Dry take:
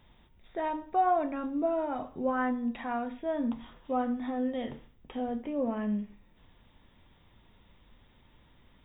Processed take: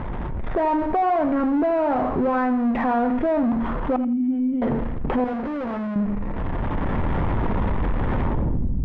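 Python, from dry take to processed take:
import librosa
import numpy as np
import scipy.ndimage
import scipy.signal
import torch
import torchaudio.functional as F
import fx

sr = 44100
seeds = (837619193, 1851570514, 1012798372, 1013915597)

p1 = fx.wiener(x, sr, points=9)
p2 = fx.recorder_agc(p1, sr, target_db=-21.0, rise_db_per_s=24.0, max_gain_db=30)
p3 = fx.power_curve(p2, sr, exponent=0.5)
p4 = fx.formant_cascade(p3, sr, vowel='i', at=(3.96, 4.62))
p5 = fx.tube_stage(p4, sr, drive_db=35.0, bias=0.7, at=(5.24, 5.96))
p6 = fx.filter_sweep_lowpass(p5, sr, from_hz=1400.0, to_hz=150.0, start_s=8.23, end_s=8.75, q=0.79)
p7 = p6 + fx.echo_feedback(p6, sr, ms=84, feedback_pct=23, wet_db=-15.0, dry=0)
y = fx.env_flatten(p7, sr, amount_pct=50)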